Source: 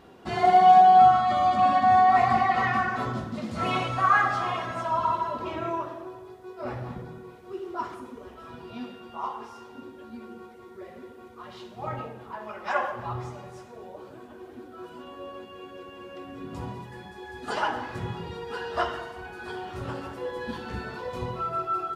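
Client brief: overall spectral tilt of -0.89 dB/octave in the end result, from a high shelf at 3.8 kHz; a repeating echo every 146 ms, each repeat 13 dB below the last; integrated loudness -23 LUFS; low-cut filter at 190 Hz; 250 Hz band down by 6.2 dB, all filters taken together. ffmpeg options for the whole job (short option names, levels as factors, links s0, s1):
-af "highpass=190,equalizer=f=250:t=o:g=-7,highshelf=f=3800:g=8.5,aecho=1:1:146|292|438:0.224|0.0493|0.0108"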